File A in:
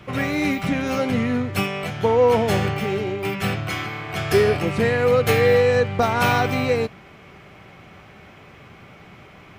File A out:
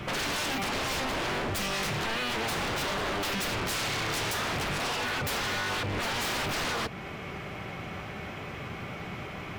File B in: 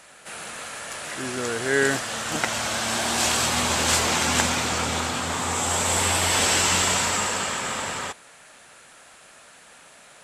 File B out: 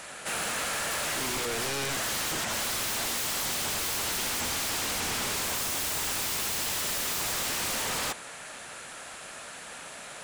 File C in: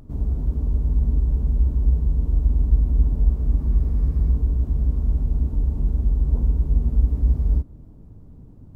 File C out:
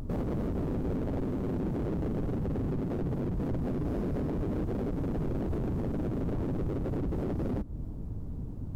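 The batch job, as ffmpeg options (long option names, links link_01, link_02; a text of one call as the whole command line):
ffmpeg -i in.wav -filter_complex "[0:a]asplit=2[link_01][link_02];[link_02]acompressor=threshold=-27dB:ratio=4,volume=1dB[link_03];[link_01][link_03]amix=inputs=2:normalize=0,alimiter=limit=-12.5dB:level=0:latency=1:release=196,aeval=exprs='0.0501*(abs(mod(val(0)/0.0501+3,4)-2)-1)':channel_layout=same" out.wav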